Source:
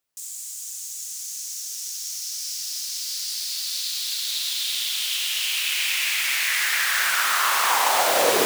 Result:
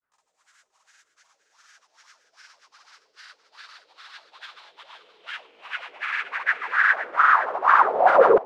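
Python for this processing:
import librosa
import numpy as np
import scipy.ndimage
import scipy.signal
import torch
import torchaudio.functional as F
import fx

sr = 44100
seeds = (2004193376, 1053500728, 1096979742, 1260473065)

y = fx.filter_lfo_lowpass(x, sr, shape='sine', hz=2.5, low_hz=410.0, high_hz=1600.0, q=5.0)
y = fx.granulator(y, sr, seeds[0], grain_ms=100.0, per_s=20.0, spray_ms=100.0, spread_st=0)
y = y + 10.0 ** (-11.0 / 20.0) * np.pad(y, (int(519 * sr / 1000.0), 0))[:len(y)]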